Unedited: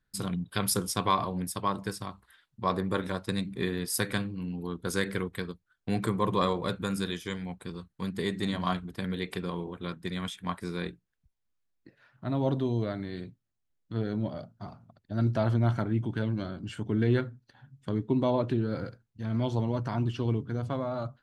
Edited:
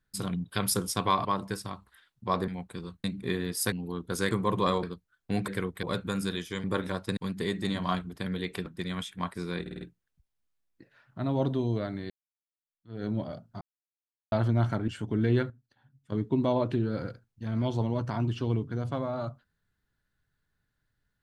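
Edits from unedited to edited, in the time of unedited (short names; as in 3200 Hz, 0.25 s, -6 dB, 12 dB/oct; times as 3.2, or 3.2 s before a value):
1.25–1.61 cut
2.84–3.37 swap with 7.39–7.95
4.05–4.47 cut
5.06–5.41 swap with 6.06–6.58
9.44–9.92 cut
10.87 stutter 0.05 s, 5 plays
13.16–14.1 fade in exponential
14.67–15.38 mute
15.94–16.66 cut
17.28–17.9 gain -9.5 dB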